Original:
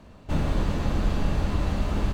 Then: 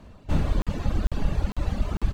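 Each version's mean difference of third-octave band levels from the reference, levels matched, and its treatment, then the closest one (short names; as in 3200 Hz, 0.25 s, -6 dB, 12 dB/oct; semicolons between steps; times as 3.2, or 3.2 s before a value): 2.5 dB: reverb removal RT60 1.7 s; low shelf 120 Hz +4.5 dB; crackling interface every 0.45 s, samples 2048, zero, from 0.62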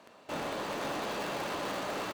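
7.5 dB: in parallel at -10 dB: Schmitt trigger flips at -38.5 dBFS; on the sum: HPF 470 Hz 12 dB/oct; echo 0.497 s -3.5 dB; soft clip -29 dBFS, distortion -14 dB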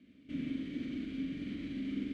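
11.0 dB: CVSD 64 kbps; limiter -19 dBFS, peak gain reduction 6 dB; vowel filter i; on a send: flutter echo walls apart 7.7 m, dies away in 0.59 s; on the sum: gain +1.5 dB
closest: first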